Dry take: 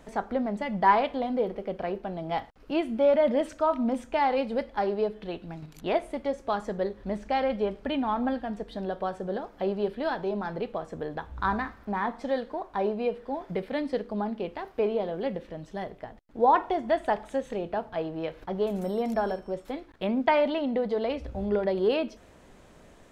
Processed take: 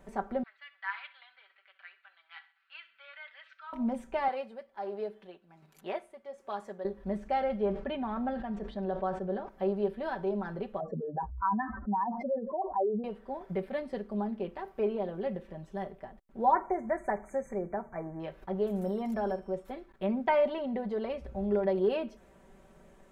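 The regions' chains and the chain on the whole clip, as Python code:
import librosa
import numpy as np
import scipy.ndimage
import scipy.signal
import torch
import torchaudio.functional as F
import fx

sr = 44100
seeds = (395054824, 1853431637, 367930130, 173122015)

y = fx.chain(x, sr, fx.ellip_bandpass(low_hz=1400.0, high_hz=4200.0, order=3, stop_db=80),
    fx.echo_feedback(ms=66, feedback_pct=46, wet_db=-17.5), at=(0.43, 3.73))
y = fx.chain(y, sr, fx.highpass(hz=630.0, slope=6),
    fx.tremolo(hz=1.3, depth=0.69), at=(4.28, 6.85))
y = fx.chain(y, sr, fx.lowpass(hz=5000.0, slope=12),
    fx.sustainer(db_per_s=91.0), at=(7.58, 9.49))
y = fx.chain(y, sr, fx.spec_expand(power=2.9),
    fx.highpass(hz=320.0, slope=6),
    fx.env_flatten(amount_pct=70), at=(10.8, 13.04))
y = fx.chain(y, sr, fx.brickwall_bandstop(low_hz=2400.0, high_hz=6000.0),
    fx.peak_eq(hz=5100.0, db=7.0, octaves=1.3), at=(16.52, 18.2))
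y = fx.peak_eq(y, sr, hz=4500.0, db=-7.5, octaves=1.6)
y = y + 0.67 * np.pad(y, (int(5.2 * sr / 1000.0), 0))[:len(y)]
y = y * 10.0 ** (-5.5 / 20.0)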